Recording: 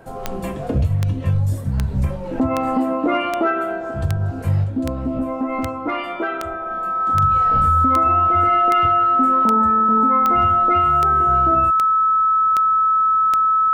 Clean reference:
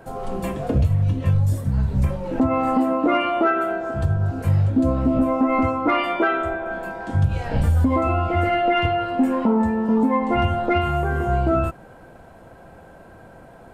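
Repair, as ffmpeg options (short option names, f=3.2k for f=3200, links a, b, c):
-af "adeclick=t=4,bandreject=f=1.3k:w=30,asetnsamples=n=441:p=0,asendcmd='4.64 volume volume 4dB',volume=0dB"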